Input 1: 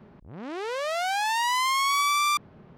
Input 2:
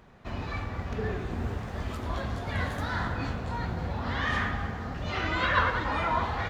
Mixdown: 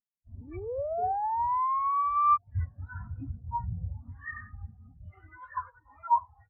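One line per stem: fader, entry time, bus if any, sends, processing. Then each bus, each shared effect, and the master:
-2.5 dB, 0.00 s, no send, treble shelf 2.9 kHz -7.5 dB
+0.5 dB, 0.00 s, no send, bass shelf 180 Hz -3.5 dB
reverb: none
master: gain riding within 4 dB 0.5 s; spectral contrast expander 4:1

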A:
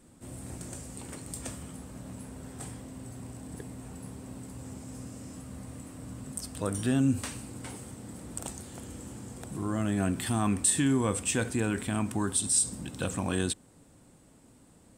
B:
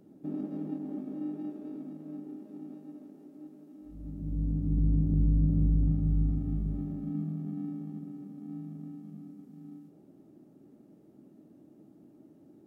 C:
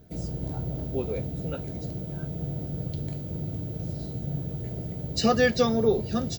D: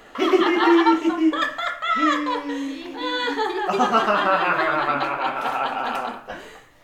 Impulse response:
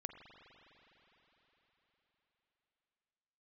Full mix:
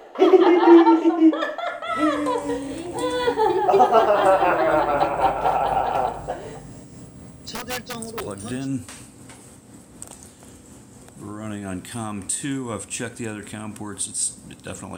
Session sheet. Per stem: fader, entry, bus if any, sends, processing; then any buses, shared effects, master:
+1.5 dB, 1.65 s, no send, none
-11.0 dB, 0.00 s, no send, none
-7.0 dB, 2.30 s, no send, integer overflow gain 14 dB
-3.5 dB, 0.00 s, no send, high-order bell 530 Hz +12.5 dB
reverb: none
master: bass shelf 220 Hz -5 dB; tremolo 4 Hz, depth 35%

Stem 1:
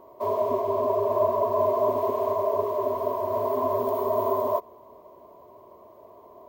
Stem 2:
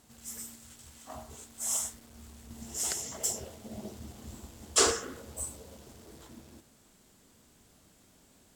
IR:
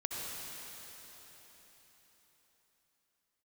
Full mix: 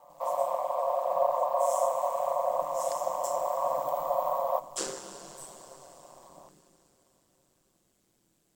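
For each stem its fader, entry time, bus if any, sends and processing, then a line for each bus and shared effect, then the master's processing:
-0.5 dB, 0.00 s, send -18 dB, elliptic high-pass 600 Hz, stop band 40 dB
-13.5 dB, 0.00 s, send -5.5 dB, treble shelf 5.3 kHz +4.5 dB; small resonant body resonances 270/460 Hz, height 6 dB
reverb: on, RT60 4.4 s, pre-delay 58 ms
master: ring modulator 70 Hz

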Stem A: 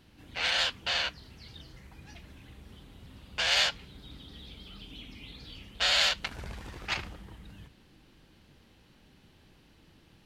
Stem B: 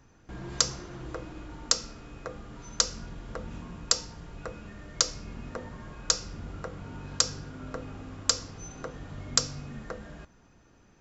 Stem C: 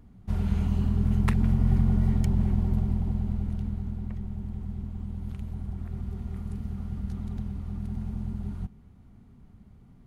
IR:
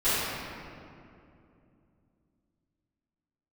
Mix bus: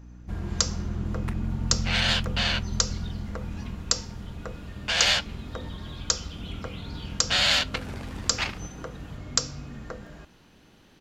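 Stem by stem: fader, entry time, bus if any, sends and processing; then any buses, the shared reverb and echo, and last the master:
+3.0 dB, 1.50 s, no send, high-pass 150 Hz
0.0 dB, 0.00 s, no send, none
-6.5 dB, 0.00 s, no send, hum 60 Hz, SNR 12 dB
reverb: none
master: none

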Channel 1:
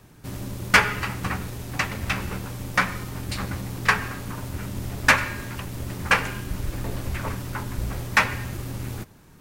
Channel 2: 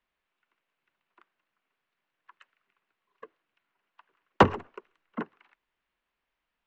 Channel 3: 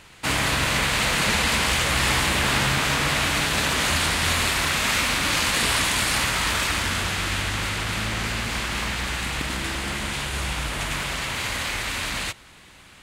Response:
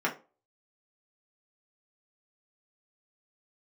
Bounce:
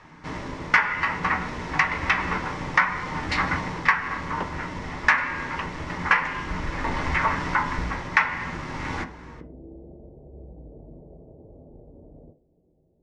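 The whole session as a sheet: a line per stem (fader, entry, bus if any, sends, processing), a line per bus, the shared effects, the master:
-1.5 dB, 0.00 s, send -7 dB, graphic EQ with 31 bands 125 Hz -9 dB, 400 Hz -10 dB, 1 kHz +11 dB, 2 kHz +9 dB; level rider gain up to 4 dB; low-pass 5.9 kHz 24 dB/octave
-15.5 dB, 0.00 s, no send, none
-13.0 dB, 0.00 s, send -9.5 dB, steep low-pass 620 Hz 48 dB/octave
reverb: on, RT60 0.35 s, pre-delay 3 ms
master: compression 3:1, threshold -19 dBFS, peak gain reduction 12 dB

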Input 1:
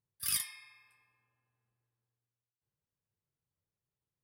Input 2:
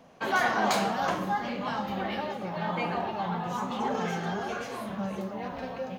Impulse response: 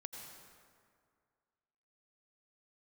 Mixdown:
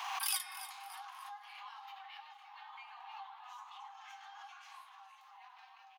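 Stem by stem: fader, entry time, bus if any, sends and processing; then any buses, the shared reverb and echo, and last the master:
0.0 dB, 0.00 s, no send, echo send -13 dB, none
-12.5 dB, 0.00 s, no send, echo send -16 dB, compression, threshold -30 dBFS, peak gain reduction 9.5 dB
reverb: none
echo: feedback delay 288 ms, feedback 32%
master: transient shaper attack +2 dB, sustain -3 dB; rippled Chebyshev high-pass 760 Hz, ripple 6 dB; swell ahead of each attack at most 30 dB/s

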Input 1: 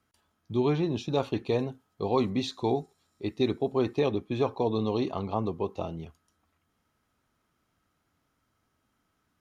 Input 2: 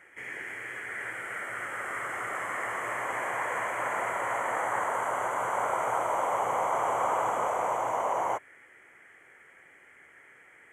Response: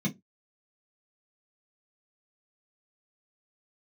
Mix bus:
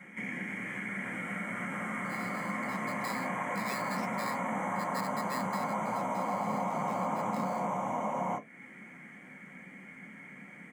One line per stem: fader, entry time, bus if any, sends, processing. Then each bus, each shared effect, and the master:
2.70 s -18 dB -> 3.04 s -6 dB -> 5.40 s -6 dB -> 5.84 s -16.5 dB -> 7.14 s -16.5 dB -> 7.39 s -6 dB, 1.55 s, no send, polarity switched at an audio rate 1.5 kHz
+3.0 dB, 0.00 s, send -3 dB, peaking EQ 320 Hz -10 dB 0.43 oct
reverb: on, pre-delay 3 ms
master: fifteen-band graphic EQ 100 Hz -10 dB, 250 Hz +10 dB, 1.6 kHz -3 dB; compression 2:1, threshold -38 dBFS, peak gain reduction 10.5 dB

